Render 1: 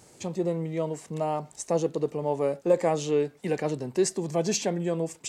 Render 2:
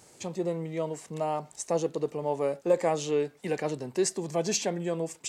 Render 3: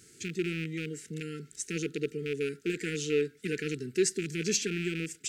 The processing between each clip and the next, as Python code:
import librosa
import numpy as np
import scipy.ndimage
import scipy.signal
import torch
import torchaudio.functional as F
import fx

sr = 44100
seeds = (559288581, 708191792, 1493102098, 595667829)

y1 = fx.low_shelf(x, sr, hz=410.0, db=-5.0)
y2 = fx.rattle_buzz(y1, sr, strikes_db=-36.0, level_db=-27.0)
y2 = fx.brickwall_bandstop(y2, sr, low_hz=470.0, high_hz=1300.0)